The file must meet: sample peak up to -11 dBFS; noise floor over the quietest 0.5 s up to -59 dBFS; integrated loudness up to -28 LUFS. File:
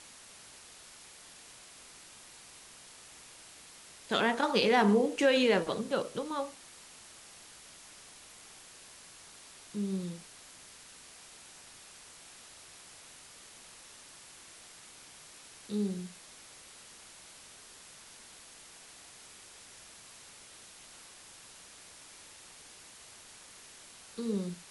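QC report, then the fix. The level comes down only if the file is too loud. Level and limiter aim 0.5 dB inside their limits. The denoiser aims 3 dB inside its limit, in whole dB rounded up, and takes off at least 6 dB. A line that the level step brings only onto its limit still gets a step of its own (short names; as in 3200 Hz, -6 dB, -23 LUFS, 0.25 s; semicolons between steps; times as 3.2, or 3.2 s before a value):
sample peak -13.5 dBFS: OK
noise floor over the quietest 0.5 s -53 dBFS: fail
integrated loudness -30.5 LUFS: OK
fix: denoiser 9 dB, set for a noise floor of -53 dBFS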